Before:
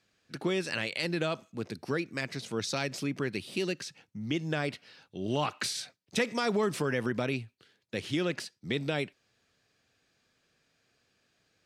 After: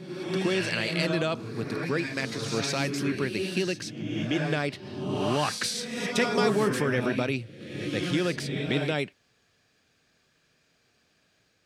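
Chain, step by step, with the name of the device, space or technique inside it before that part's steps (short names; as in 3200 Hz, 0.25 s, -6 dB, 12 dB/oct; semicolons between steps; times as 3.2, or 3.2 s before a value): reverse reverb (reverse; reverb RT60 1.2 s, pre-delay 0.105 s, DRR 3.5 dB; reverse); gain +3 dB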